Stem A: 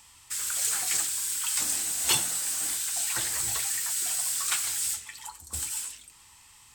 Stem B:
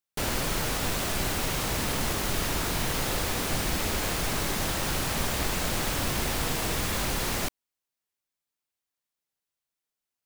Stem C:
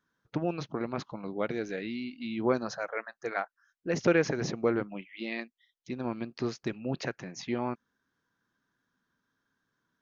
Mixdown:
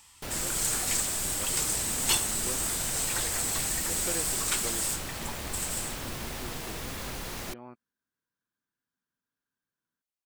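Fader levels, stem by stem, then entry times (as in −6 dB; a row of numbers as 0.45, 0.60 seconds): −1.5, −8.5, −14.0 decibels; 0.00, 0.05, 0.00 seconds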